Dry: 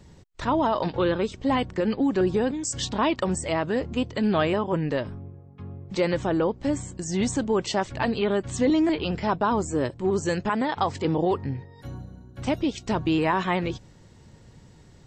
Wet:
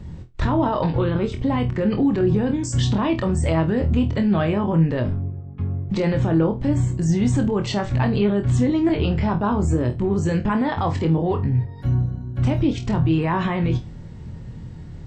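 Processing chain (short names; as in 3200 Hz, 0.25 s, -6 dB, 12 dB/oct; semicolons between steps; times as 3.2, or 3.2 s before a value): tone controls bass +11 dB, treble -9 dB; limiter -18.5 dBFS, peak gain reduction 10 dB; on a send: flutter echo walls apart 4.2 m, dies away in 0.22 s; on the sum: gain +5 dB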